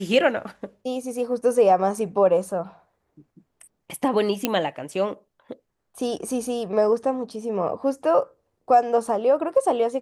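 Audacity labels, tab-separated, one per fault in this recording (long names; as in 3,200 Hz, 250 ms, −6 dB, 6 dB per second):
4.450000	4.450000	click −6 dBFS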